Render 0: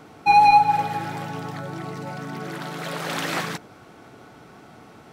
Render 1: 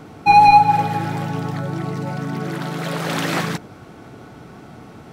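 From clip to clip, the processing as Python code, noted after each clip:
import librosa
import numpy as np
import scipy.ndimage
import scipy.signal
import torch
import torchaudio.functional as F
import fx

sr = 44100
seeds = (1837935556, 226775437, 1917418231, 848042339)

y = fx.low_shelf(x, sr, hz=300.0, db=8.5)
y = F.gain(torch.from_numpy(y), 3.0).numpy()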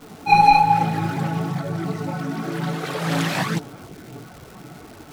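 y = fx.chorus_voices(x, sr, voices=4, hz=0.99, base_ms=21, depth_ms=3.6, mix_pct=70)
y = fx.dmg_crackle(y, sr, seeds[0], per_s=460.0, level_db=-36.0)
y = F.gain(torch.from_numpy(y), 1.0).numpy()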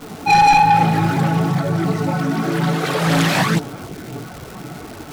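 y = 10.0 ** (-16.0 / 20.0) * np.tanh(x / 10.0 ** (-16.0 / 20.0))
y = F.gain(torch.from_numpy(y), 8.0).numpy()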